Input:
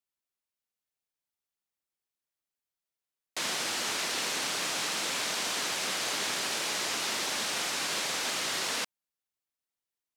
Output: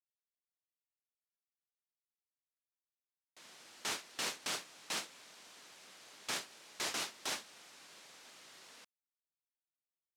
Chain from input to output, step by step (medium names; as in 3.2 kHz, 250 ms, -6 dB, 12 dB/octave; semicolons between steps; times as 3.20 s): gate with hold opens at -20 dBFS; trim -4.5 dB